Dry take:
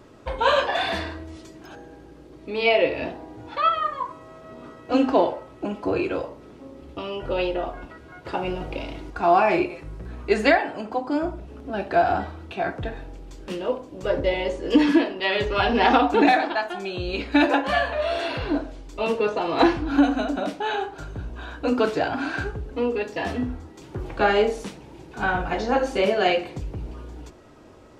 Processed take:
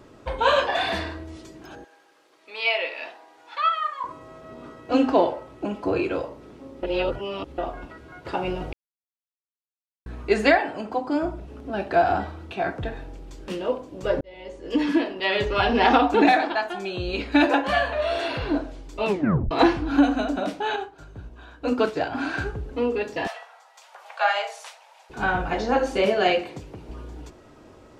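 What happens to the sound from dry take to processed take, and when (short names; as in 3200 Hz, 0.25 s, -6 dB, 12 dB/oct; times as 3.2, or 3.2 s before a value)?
1.84–4.04 HPF 1000 Hz
6.83–7.58 reverse
8.73–10.06 mute
14.21–15.31 fade in
19.07 tape stop 0.44 s
20.76–22.15 upward expander, over -39 dBFS
23.27–25.1 steep high-pass 620 Hz 48 dB/oct
26.41–26.88 HPF 150 Hz -> 360 Hz 6 dB/oct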